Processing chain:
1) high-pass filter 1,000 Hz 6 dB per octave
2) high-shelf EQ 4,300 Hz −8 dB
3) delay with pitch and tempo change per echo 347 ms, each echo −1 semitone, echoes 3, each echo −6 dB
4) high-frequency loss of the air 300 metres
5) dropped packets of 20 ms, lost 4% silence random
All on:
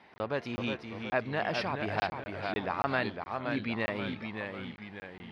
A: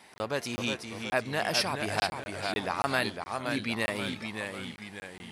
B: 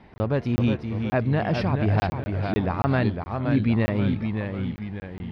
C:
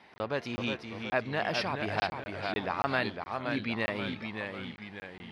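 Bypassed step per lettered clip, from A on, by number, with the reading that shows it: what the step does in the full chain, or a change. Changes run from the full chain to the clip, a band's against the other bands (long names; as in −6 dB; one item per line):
4, 4 kHz band +7.5 dB
1, 125 Hz band +14.5 dB
2, 4 kHz band +3.0 dB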